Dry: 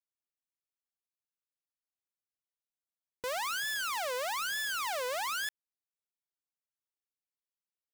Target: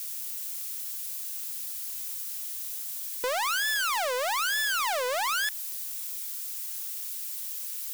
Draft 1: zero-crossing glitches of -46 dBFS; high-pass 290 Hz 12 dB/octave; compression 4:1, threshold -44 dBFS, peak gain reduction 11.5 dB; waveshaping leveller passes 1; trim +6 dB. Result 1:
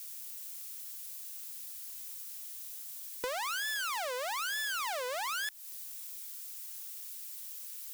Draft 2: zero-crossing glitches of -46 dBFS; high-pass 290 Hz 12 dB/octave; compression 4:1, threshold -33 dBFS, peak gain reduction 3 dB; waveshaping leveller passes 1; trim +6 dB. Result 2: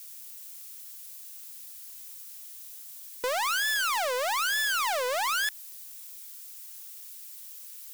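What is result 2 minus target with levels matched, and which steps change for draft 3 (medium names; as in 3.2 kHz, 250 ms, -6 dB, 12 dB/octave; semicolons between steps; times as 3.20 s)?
zero-crossing glitches: distortion -8 dB
change: zero-crossing glitches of -37.5 dBFS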